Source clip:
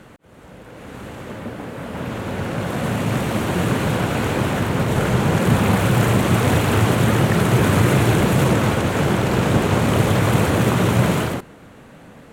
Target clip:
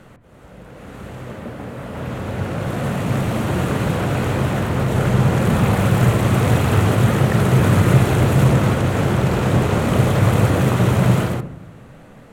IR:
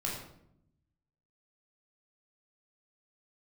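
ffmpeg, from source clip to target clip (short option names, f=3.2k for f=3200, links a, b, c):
-filter_complex "[0:a]asplit=2[a][b];[1:a]atrim=start_sample=2205,lowpass=2.3k,lowshelf=f=110:g=9[c];[b][c]afir=irnorm=-1:irlink=0,volume=-11.5dB[d];[a][d]amix=inputs=2:normalize=0,volume=-2.5dB"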